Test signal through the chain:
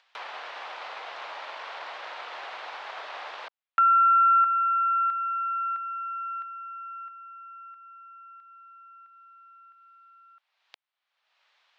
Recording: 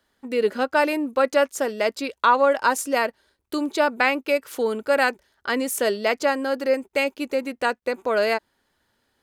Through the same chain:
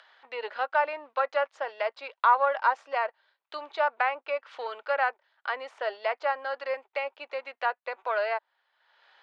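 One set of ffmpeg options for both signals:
-filter_complex "[0:a]aeval=exprs='if(lt(val(0),0),0.708*val(0),val(0))':c=same,acrossover=split=1500[a][b];[b]acompressor=threshold=-38dB:ratio=6[c];[a][c]amix=inputs=2:normalize=0,lowpass=f=3.8k:w=0.5412,lowpass=f=3.8k:w=1.3066,acompressor=mode=upward:threshold=-43dB:ratio=2.5,highpass=f=680:w=0.5412,highpass=f=680:w=1.3066"

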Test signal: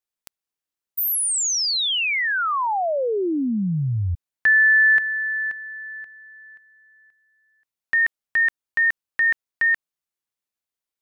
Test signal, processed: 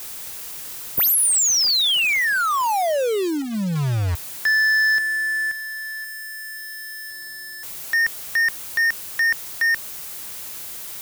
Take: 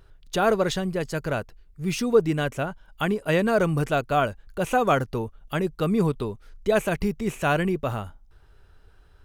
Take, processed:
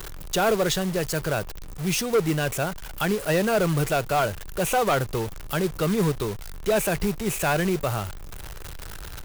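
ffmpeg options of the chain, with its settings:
-filter_complex "[0:a]aeval=exprs='val(0)+0.5*0.0237*sgn(val(0))':c=same,equalizer=f=250:t=o:w=0.29:g=-8.5,acrossover=split=160[a][b];[b]crystalizer=i=1:c=0[c];[a][c]amix=inputs=2:normalize=0,asoftclip=type=hard:threshold=-15dB,acrusher=bits=3:mode=log:mix=0:aa=0.000001"

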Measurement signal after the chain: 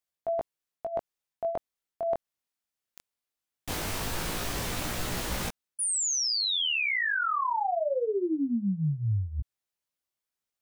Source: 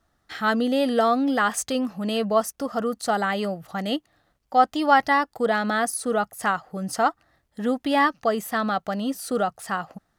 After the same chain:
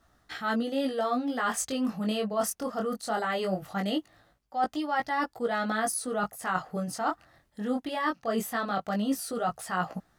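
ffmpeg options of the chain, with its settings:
-af "areverse,acompressor=threshold=-31dB:ratio=6,areverse,flanger=delay=16.5:depth=7.5:speed=0.2,volume=7dB"

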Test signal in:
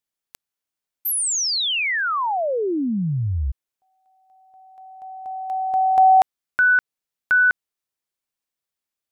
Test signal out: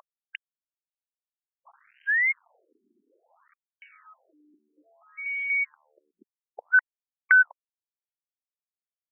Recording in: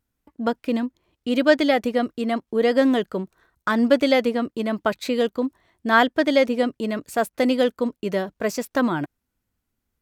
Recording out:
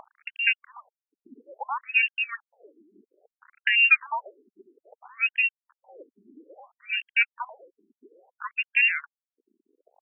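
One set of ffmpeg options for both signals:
-af "acompressor=mode=upward:threshold=-34dB:ratio=4:attack=26:release=224:knee=2.83:detection=peak,lowpass=f=2.6k:t=q:w=0.5098,lowpass=f=2.6k:t=q:w=0.6013,lowpass=f=2.6k:t=q:w=0.9,lowpass=f=2.6k:t=q:w=2.563,afreqshift=-3000,aresample=8000,aeval=exprs='val(0)*gte(abs(val(0)),0.00944)':c=same,aresample=44100,afftfilt=real='re*between(b*sr/1024,280*pow(2300/280,0.5+0.5*sin(2*PI*0.6*pts/sr))/1.41,280*pow(2300/280,0.5+0.5*sin(2*PI*0.6*pts/sr))*1.41)':imag='im*between(b*sr/1024,280*pow(2300/280,0.5+0.5*sin(2*PI*0.6*pts/sr))/1.41,280*pow(2300/280,0.5+0.5*sin(2*PI*0.6*pts/sr))*1.41)':win_size=1024:overlap=0.75"

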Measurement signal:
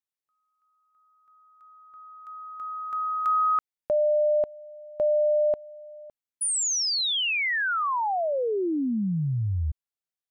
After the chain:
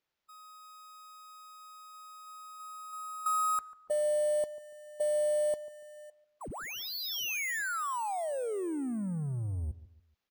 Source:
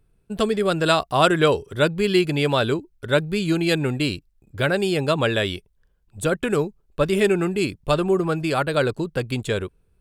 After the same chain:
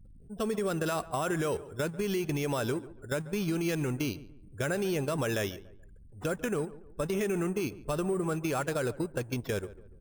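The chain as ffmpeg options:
-filter_complex "[0:a]aeval=exprs='val(0)+0.5*0.0316*sgn(val(0))':c=same,agate=range=-10dB:threshold=-25dB:ratio=16:release=67:detection=peak,afftdn=nr=33:nf=-43,acrossover=split=3100[a][b];[b]acompressor=threshold=-35dB:ratio=4:attack=1:release=60[c];[a][c]amix=inputs=2:normalize=0,alimiter=limit=-13.5dB:level=0:latency=1:release=66,acompressor=threshold=-24dB:ratio=2.5:attack=20:release=96:knee=1:detection=rms,acrusher=samples=5:mix=1:aa=0.000001,asplit=2[d][e];[e]adelay=143,lowpass=f=1.6k:p=1,volume=-17dB,asplit=2[f][g];[g]adelay=143,lowpass=f=1.6k:p=1,volume=0.37,asplit=2[h][i];[i]adelay=143,lowpass=f=1.6k:p=1,volume=0.37[j];[f][h][j]amix=inputs=3:normalize=0[k];[d][k]amix=inputs=2:normalize=0,volume=-5.5dB"

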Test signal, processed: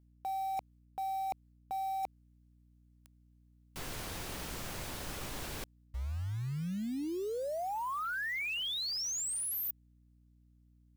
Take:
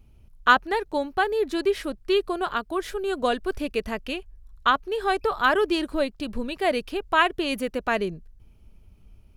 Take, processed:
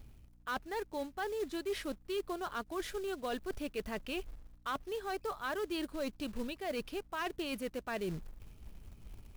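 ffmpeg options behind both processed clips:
-af "areverse,acompressor=threshold=-36dB:ratio=5,areverse,volume=31.5dB,asoftclip=hard,volume=-31.5dB,acrusher=bits=4:mode=log:mix=0:aa=0.000001,aeval=exprs='val(0)+0.000708*(sin(2*PI*60*n/s)+sin(2*PI*2*60*n/s)/2+sin(2*PI*3*60*n/s)/3+sin(2*PI*4*60*n/s)/4+sin(2*PI*5*60*n/s)/5)':c=same"

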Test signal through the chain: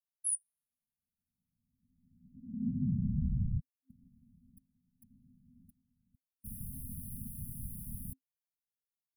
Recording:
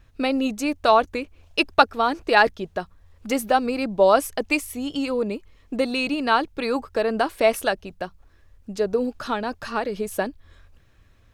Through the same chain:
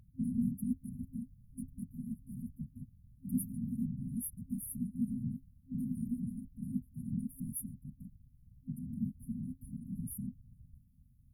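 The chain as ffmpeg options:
-af "afftfilt=real='hypot(re,im)*cos(2*PI*random(0))':imag='hypot(re,im)*sin(2*PI*random(1))':win_size=512:overlap=0.75,afftfilt=real='re*(1-between(b*sr/4096,260,9400))':imag='im*(1-between(b*sr/4096,260,9400))':win_size=4096:overlap=0.75"

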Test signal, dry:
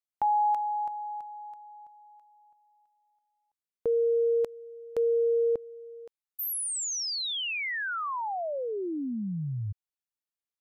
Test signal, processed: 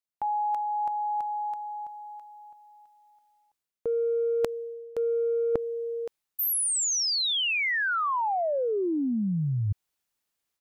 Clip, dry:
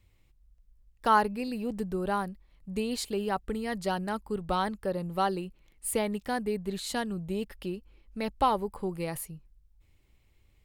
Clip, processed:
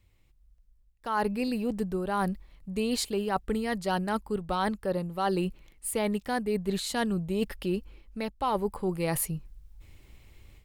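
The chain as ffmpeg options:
-af "dynaudnorm=f=660:g=3:m=13dB,aeval=exprs='0.841*(cos(1*acos(clip(val(0)/0.841,-1,1)))-cos(1*PI/2))+0.00841*(cos(7*acos(clip(val(0)/0.841,-1,1)))-cos(7*PI/2))':c=same,areverse,acompressor=threshold=-25dB:ratio=12:attack=31:release=464:knee=6:detection=rms,areverse"

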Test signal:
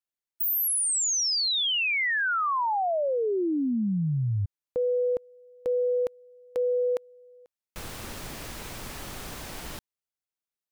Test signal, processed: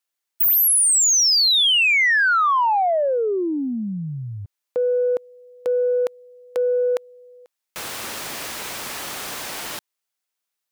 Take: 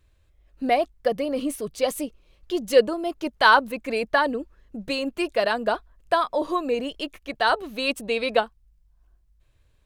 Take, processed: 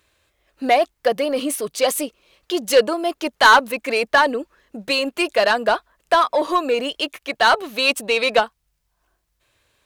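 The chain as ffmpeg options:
-filter_complex "[0:a]highpass=f=660:p=1,aeval=exprs='0.631*(cos(1*acos(clip(val(0)/0.631,-1,1)))-cos(1*PI/2))+0.0794*(cos(5*acos(clip(val(0)/0.631,-1,1)))-cos(5*PI/2))+0.00501*(cos(6*acos(clip(val(0)/0.631,-1,1)))-cos(6*PI/2))':c=same,asplit=2[a][b];[b]asoftclip=type=tanh:threshold=-21.5dB,volume=-3.5dB[c];[a][c]amix=inputs=2:normalize=0,volume=2dB"

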